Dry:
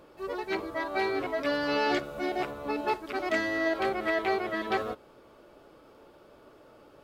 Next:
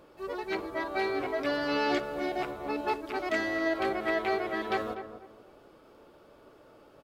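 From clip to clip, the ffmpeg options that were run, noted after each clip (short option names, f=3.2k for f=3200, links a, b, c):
-filter_complex "[0:a]asplit=2[a][b];[b]adelay=245,lowpass=f=1.2k:p=1,volume=-9dB,asplit=2[c][d];[d]adelay=245,lowpass=f=1.2k:p=1,volume=0.3,asplit=2[e][f];[f]adelay=245,lowpass=f=1.2k:p=1,volume=0.3[g];[a][c][e][g]amix=inputs=4:normalize=0,volume=-1.5dB"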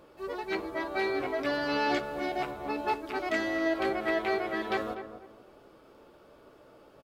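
-filter_complex "[0:a]asplit=2[a][b];[b]adelay=15,volume=-12dB[c];[a][c]amix=inputs=2:normalize=0"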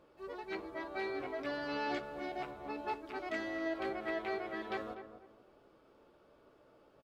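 -af "highshelf=f=8.2k:g=-8.5,volume=-8.5dB"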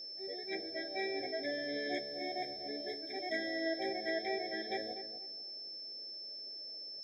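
-af "highpass=f=310:p=1,aeval=exprs='val(0)+0.00501*sin(2*PI*5300*n/s)':c=same,afftfilt=real='re*eq(mod(floor(b*sr/1024/790),2),0)':imag='im*eq(mod(floor(b*sr/1024/790),2),0)':win_size=1024:overlap=0.75,volume=2.5dB"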